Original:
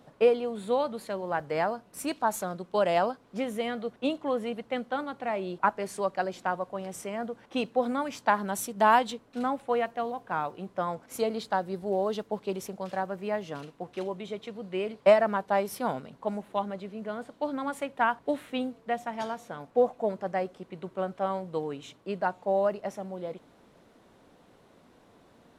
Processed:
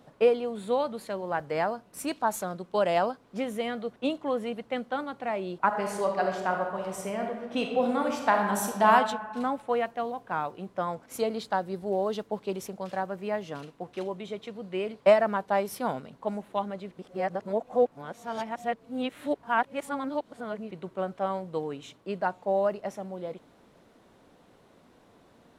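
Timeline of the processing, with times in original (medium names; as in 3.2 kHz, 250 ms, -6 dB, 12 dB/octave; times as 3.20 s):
5.66–8.91 s: reverb throw, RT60 1.3 s, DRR 1.5 dB
16.91–20.71 s: reverse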